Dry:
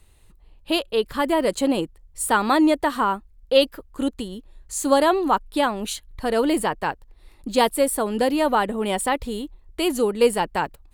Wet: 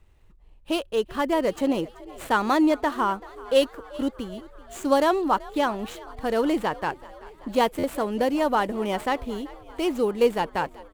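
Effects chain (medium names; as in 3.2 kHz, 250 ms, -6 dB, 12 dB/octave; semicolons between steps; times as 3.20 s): median filter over 9 samples; frequency-shifting echo 384 ms, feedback 65%, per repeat +51 Hz, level -20.5 dB; buffer glitch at 7.78 s, samples 512, times 4; trim -2.5 dB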